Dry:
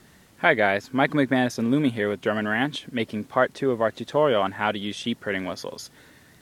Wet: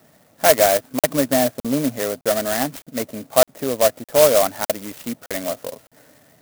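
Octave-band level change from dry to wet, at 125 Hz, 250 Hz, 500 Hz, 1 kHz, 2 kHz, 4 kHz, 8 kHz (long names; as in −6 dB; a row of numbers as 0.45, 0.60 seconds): −1.5, 0.0, +6.5, +2.5, −3.0, +5.0, +19.5 decibels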